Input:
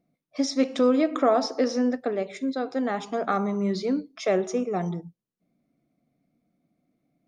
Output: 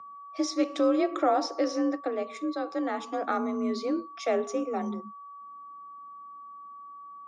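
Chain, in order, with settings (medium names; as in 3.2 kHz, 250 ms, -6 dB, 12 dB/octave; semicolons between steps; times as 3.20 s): whistle 1.1 kHz -39 dBFS; frequency shift +39 Hz; trim -3.5 dB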